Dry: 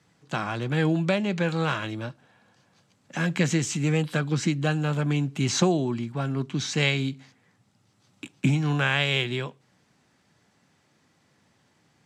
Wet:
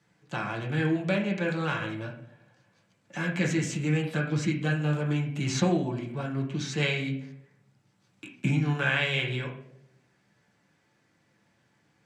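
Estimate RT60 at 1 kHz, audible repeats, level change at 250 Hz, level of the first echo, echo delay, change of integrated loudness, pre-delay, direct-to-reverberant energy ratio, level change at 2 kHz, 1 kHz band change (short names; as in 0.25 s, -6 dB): 0.60 s, none, -2.5 dB, none, none, -3.0 dB, 5 ms, -2.0 dB, -1.5 dB, -4.0 dB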